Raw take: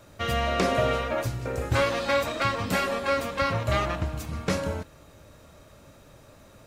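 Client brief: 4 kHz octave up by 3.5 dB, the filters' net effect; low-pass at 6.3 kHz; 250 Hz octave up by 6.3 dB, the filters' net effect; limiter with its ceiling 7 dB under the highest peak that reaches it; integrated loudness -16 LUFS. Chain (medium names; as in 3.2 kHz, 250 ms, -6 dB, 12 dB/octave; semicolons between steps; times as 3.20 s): low-pass 6.3 kHz; peaking EQ 250 Hz +8 dB; peaking EQ 4 kHz +5 dB; trim +10.5 dB; peak limiter -5 dBFS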